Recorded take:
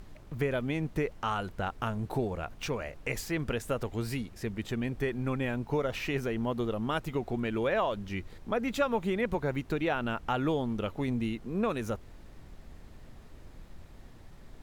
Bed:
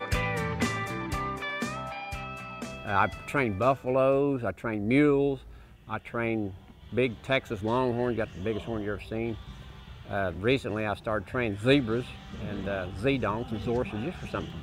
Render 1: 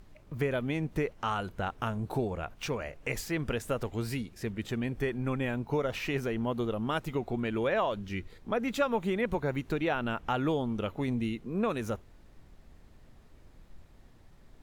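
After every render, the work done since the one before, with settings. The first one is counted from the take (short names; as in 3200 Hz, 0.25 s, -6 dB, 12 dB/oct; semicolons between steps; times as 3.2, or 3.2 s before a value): noise print and reduce 6 dB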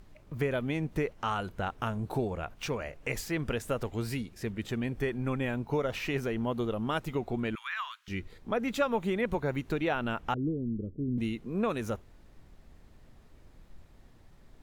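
7.55–8.08 steep high-pass 1100 Hz 48 dB/oct; 10.34–11.18 inverse Chebyshev low-pass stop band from 760 Hz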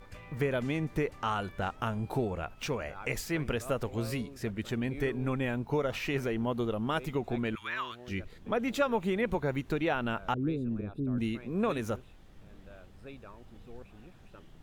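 add bed -21.5 dB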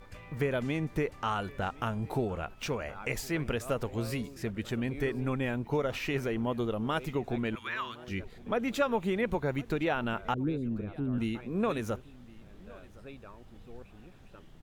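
echo 1.064 s -22.5 dB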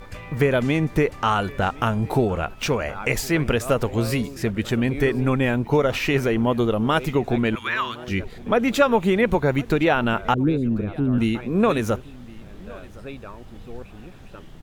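gain +11 dB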